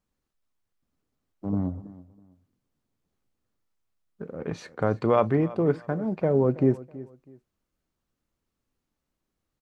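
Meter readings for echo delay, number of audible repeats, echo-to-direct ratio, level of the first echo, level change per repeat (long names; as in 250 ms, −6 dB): 325 ms, 2, −18.0 dB, −18.5 dB, −11.5 dB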